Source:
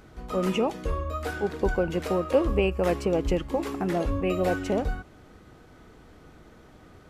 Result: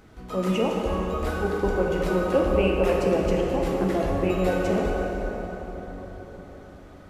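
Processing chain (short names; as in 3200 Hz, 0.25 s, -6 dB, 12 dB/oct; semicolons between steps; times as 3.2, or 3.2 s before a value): plate-style reverb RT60 4.9 s, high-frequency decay 0.55×, DRR -2 dB; gain -1.5 dB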